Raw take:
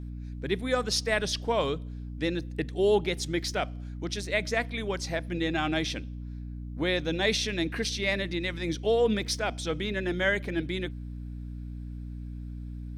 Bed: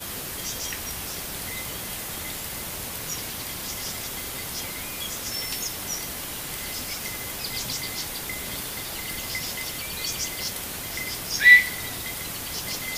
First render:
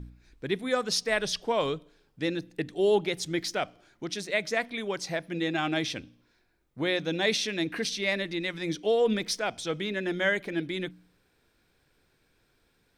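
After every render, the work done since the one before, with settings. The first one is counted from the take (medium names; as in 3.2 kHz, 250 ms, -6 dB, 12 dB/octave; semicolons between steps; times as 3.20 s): de-hum 60 Hz, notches 5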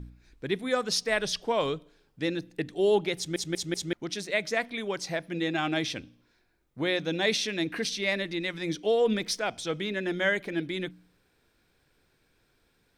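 3.17 s: stutter in place 0.19 s, 4 plays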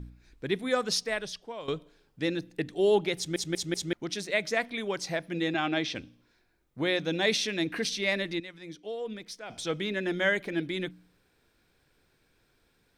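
0.91–1.68 s: fade out quadratic, to -14 dB; 5.54–5.95 s: band-pass 160–5300 Hz; 8.40–9.50 s: gain -12 dB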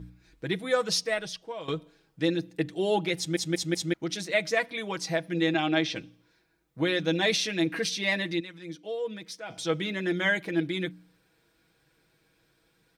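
high-pass 48 Hz; comb 6.2 ms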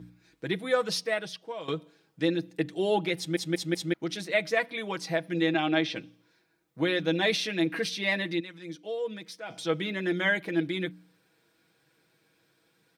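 high-pass 130 Hz; dynamic bell 6.7 kHz, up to -7 dB, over -49 dBFS, Q 1.3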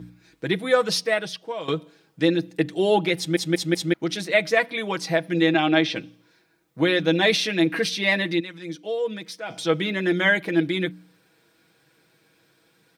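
trim +6.5 dB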